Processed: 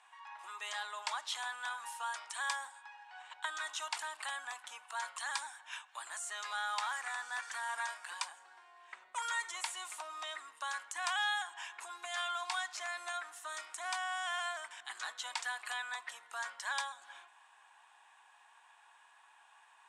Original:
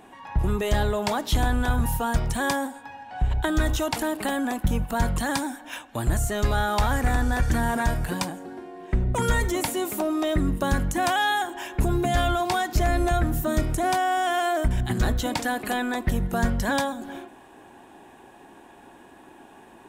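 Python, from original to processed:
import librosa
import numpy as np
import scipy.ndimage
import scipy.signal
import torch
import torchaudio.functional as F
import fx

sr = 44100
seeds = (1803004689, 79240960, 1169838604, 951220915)

y = scipy.signal.sosfilt(scipy.signal.ellip(3, 1.0, 70, [1000.0, 8800.0], 'bandpass', fs=sr, output='sos'), x)
y = y * 10.0 ** (-7.5 / 20.0)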